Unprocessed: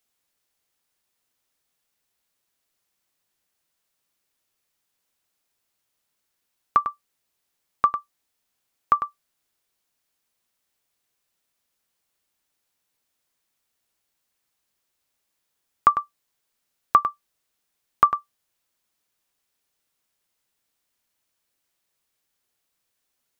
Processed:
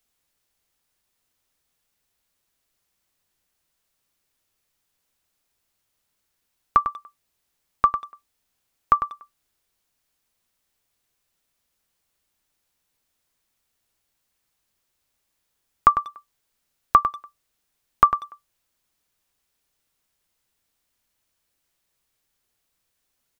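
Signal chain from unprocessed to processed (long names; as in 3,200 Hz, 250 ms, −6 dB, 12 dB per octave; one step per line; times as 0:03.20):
low-shelf EQ 100 Hz +10 dB
far-end echo of a speakerphone 190 ms, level −21 dB
level +1.5 dB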